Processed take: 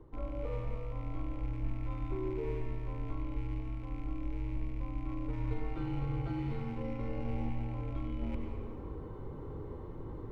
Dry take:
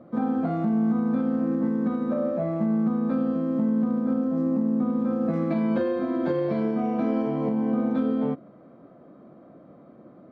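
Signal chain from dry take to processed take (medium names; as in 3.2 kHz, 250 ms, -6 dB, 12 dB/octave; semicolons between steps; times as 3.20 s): rattle on loud lows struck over -38 dBFS, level -36 dBFS; band-stop 1.9 kHz, Q 16; reverse; compression 4:1, threshold -42 dBFS, peak gain reduction 18 dB; reverse; frequency shift -210 Hz; reverberation RT60 1.8 s, pre-delay 87 ms, DRR 3 dB; trim +5 dB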